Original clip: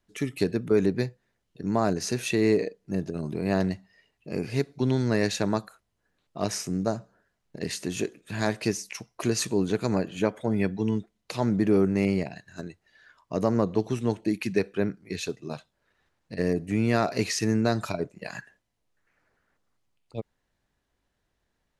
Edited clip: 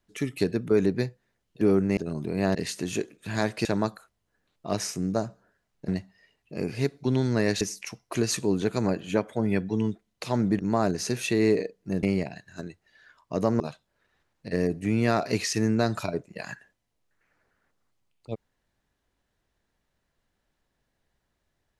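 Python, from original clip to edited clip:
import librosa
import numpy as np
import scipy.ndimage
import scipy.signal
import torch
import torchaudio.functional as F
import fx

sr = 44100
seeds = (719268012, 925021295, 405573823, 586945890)

y = fx.edit(x, sr, fx.swap(start_s=1.61, length_s=1.44, other_s=11.67, other_length_s=0.36),
    fx.swap(start_s=3.63, length_s=1.73, other_s=7.59, other_length_s=1.1),
    fx.cut(start_s=13.6, length_s=1.86), tone=tone)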